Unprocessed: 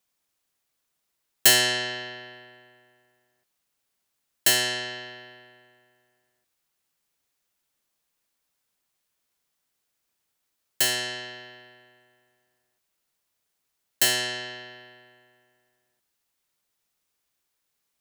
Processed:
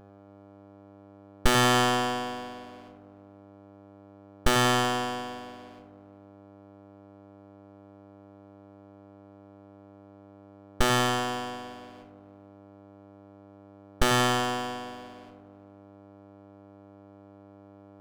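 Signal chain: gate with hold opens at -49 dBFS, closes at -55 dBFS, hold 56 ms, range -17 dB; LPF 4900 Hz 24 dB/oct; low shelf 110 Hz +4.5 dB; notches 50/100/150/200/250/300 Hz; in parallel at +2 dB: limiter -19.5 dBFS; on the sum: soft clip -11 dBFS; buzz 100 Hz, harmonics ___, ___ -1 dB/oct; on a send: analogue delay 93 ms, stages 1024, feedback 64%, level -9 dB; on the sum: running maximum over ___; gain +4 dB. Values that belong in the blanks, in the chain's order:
8, -56 dBFS, 17 samples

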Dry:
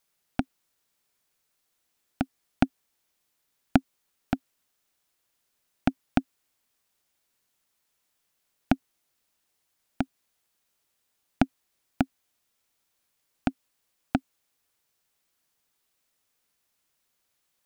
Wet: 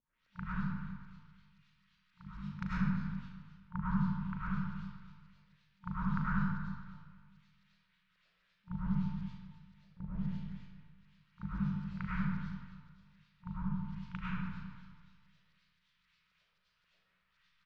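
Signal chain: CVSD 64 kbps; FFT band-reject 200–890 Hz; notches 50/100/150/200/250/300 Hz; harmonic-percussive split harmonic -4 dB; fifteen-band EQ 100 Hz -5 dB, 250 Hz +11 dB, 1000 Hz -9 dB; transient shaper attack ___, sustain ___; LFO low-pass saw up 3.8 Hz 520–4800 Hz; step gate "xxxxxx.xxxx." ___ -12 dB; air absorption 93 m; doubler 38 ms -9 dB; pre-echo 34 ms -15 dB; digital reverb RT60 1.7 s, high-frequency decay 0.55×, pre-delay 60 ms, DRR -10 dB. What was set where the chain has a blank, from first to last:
-7 dB, +10 dB, 126 bpm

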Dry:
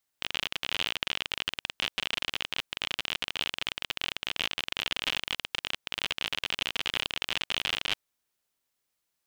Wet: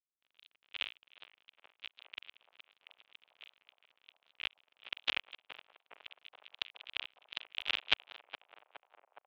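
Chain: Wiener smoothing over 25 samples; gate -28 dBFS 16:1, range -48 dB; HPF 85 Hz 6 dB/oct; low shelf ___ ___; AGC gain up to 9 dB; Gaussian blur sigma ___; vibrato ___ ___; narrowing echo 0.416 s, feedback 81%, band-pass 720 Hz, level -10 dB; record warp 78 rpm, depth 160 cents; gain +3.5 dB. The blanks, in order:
330 Hz, -10 dB, 2 samples, 0.79 Hz, 32 cents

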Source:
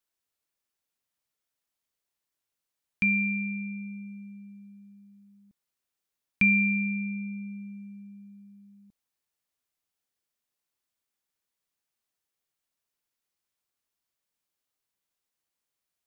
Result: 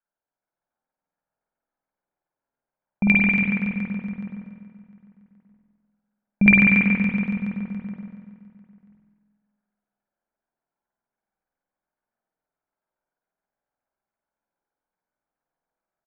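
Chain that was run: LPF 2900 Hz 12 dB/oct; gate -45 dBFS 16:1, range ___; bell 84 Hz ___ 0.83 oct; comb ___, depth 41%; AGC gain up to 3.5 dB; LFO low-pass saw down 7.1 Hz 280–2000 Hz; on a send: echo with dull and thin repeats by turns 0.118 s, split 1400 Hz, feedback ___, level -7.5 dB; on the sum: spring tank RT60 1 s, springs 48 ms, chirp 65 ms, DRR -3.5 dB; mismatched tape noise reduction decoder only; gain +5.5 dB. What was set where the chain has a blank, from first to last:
-9 dB, -12.5 dB, 1.3 ms, 61%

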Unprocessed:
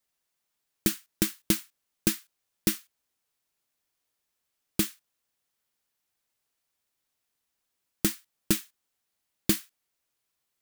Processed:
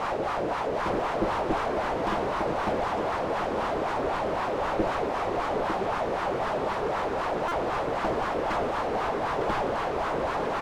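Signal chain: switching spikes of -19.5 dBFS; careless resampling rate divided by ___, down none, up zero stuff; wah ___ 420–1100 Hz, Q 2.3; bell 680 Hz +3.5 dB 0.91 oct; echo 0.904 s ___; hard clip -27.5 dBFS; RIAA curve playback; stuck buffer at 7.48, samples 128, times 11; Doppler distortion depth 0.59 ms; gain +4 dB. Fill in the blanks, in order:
3×, 3.9 Hz, -9 dB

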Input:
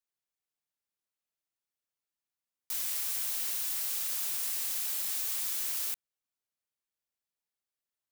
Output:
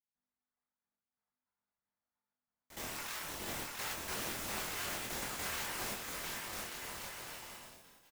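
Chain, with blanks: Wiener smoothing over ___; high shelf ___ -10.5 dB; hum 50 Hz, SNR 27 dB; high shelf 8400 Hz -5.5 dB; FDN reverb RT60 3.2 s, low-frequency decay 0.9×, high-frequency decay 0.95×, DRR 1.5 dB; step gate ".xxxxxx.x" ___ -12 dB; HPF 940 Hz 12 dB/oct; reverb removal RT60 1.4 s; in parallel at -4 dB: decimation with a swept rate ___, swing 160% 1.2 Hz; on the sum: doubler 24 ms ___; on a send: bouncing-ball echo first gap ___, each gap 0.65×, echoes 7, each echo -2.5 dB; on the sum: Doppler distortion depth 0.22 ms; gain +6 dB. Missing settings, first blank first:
15 samples, 3300 Hz, 103 bpm, 18×, -5 dB, 0.69 s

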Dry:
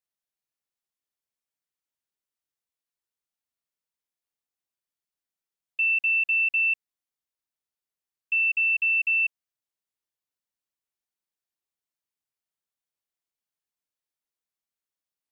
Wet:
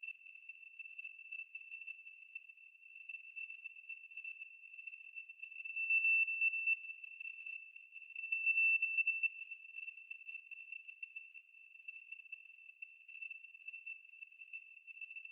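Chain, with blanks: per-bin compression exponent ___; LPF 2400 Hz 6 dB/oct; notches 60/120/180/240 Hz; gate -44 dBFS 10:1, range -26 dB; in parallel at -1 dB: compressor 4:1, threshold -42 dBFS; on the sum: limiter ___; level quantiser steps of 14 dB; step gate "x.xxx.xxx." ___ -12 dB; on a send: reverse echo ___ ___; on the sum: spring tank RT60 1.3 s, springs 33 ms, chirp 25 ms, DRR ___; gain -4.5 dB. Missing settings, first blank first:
0.2, -22.5 dBFS, 117 bpm, 0.137 s, -8 dB, 8.5 dB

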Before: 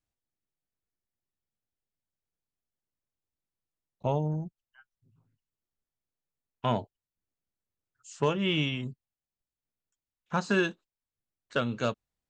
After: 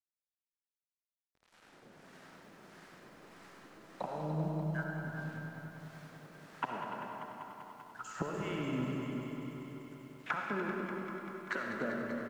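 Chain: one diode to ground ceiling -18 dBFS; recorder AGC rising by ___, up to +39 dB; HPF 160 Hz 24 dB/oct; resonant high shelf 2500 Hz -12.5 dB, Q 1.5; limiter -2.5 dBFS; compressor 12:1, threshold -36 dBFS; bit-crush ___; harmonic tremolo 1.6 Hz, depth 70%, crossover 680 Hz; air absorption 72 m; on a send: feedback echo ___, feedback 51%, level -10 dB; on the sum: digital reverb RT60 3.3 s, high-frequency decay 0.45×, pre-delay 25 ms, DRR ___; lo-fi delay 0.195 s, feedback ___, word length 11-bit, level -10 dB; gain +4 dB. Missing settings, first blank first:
22 dB/s, 10-bit, 0.293 s, 0 dB, 80%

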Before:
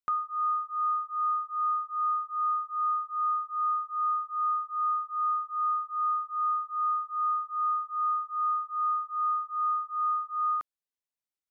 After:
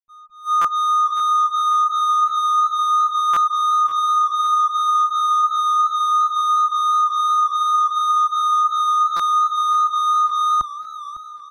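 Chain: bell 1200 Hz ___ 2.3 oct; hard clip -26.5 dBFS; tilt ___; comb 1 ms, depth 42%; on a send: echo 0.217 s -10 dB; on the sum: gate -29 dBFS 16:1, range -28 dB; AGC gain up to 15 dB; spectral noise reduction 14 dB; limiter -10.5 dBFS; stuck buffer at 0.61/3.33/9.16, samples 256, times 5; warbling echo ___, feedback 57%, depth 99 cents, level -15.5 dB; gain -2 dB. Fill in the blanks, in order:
+14 dB, -5 dB/oct, 0.551 s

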